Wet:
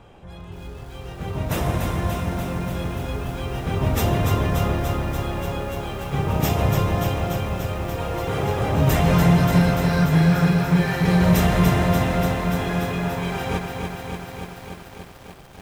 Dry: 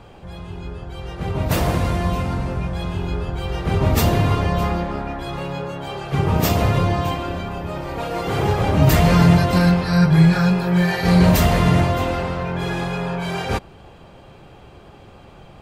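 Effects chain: notch 4500 Hz, Q 6.2; lo-fi delay 0.291 s, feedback 80%, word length 7-bit, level -5 dB; gain -4.5 dB

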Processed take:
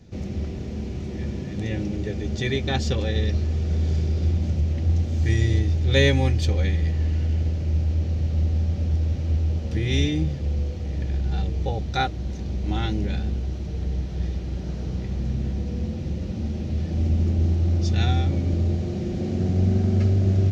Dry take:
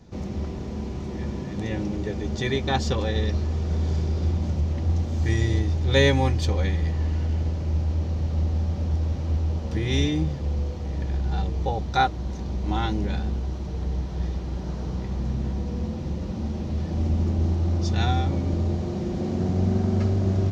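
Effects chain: fifteen-band EQ 100 Hz +4 dB, 1000 Hz -10 dB, 2500 Hz +3 dB

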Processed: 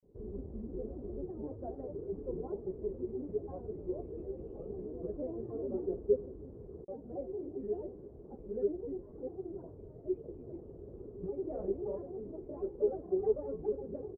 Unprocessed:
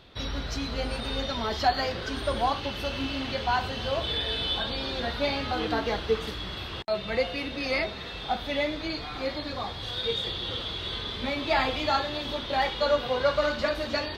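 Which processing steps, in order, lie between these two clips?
grains, spray 21 ms, pitch spread up and down by 7 st; ladder low-pass 450 Hz, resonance 65%

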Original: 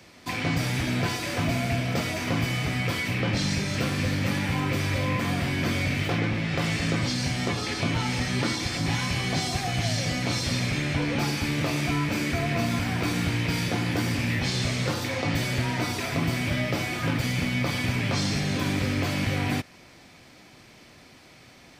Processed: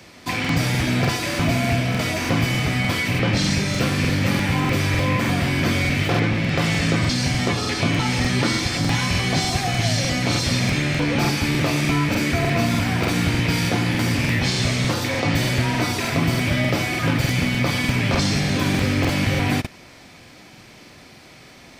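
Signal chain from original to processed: crackling interface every 0.30 s, samples 2048, repeat, from 0.4; gain +6 dB

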